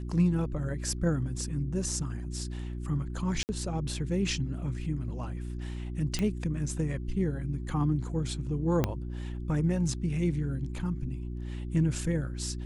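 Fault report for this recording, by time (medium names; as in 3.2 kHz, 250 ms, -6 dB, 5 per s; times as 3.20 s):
hum 60 Hz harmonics 6 -36 dBFS
3.43–3.49 s: dropout 59 ms
6.19 s: pop -17 dBFS
8.84 s: pop -12 dBFS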